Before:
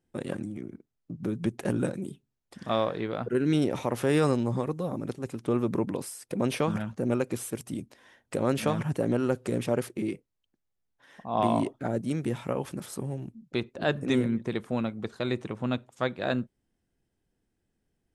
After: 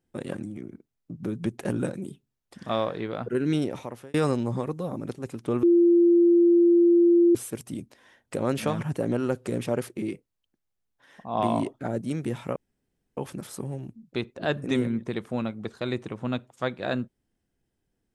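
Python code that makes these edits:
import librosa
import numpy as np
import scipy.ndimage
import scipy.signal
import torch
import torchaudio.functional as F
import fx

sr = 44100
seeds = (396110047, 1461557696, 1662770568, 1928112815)

y = fx.edit(x, sr, fx.fade_out_span(start_s=3.52, length_s=0.62),
    fx.bleep(start_s=5.63, length_s=1.72, hz=344.0, db=-14.5),
    fx.insert_room_tone(at_s=12.56, length_s=0.61), tone=tone)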